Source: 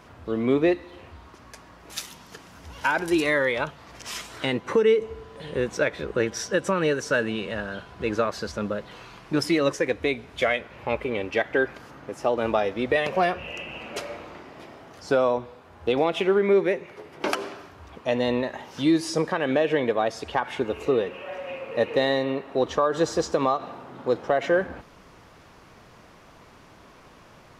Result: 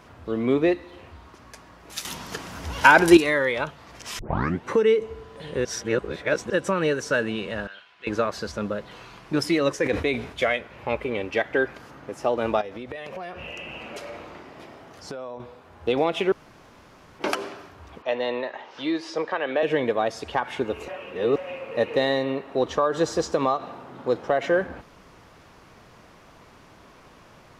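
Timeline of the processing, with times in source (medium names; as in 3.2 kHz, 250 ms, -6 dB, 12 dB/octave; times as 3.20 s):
2.05–3.17 s: gain +10 dB
4.19 s: tape start 0.47 s
5.65–6.50 s: reverse
7.67–8.07 s: band-pass filter 2.7 kHz, Q 1.5
9.80–10.45 s: decay stretcher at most 96 dB/s
12.61–15.40 s: compression 8:1, threshold -32 dBFS
16.32–17.19 s: room tone
18.02–19.63 s: three-band isolator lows -17 dB, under 350 Hz, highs -23 dB, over 4.8 kHz
20.88–21.36 s: reverse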